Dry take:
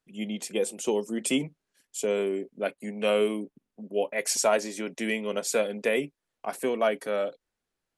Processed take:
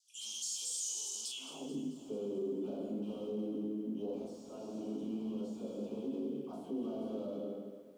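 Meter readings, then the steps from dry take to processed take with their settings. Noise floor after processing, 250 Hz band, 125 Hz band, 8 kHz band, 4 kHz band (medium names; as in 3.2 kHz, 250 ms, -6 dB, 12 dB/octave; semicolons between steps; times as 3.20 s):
-52 dBFS, -5.5 dB, -6.5 dB, -7.0 dB, -8.5 dB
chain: high-pass 57 Hz 24 dB/octave; amplifier tone stack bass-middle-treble 6-0-2; plate-style reverb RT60 1.2 s, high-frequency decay 0.9×, DRR -4 dB; compression, threshold -46 dBFS, peak gain reduction 12.5 dB; peaking EQ 3 kHz +7 dB 0.31 oct; phase dispersion lows, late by 83 ms, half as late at 780 Hz; overdrive pedal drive 27 dB, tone 6.3 kHz, clips at -33 dBFS; band-pass sweep 6.1 kHz -> 270 Hz, 1.23–1.77 s; peak limiter -44.5 dBFS, peak gain reduction 8.5 dB; Butterworth band-stop 1.9 kHz, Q 0.73; bit-crushed delay 219 ms, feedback 55%, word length 13-bit, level -13.5 dB; trim +13.5 dB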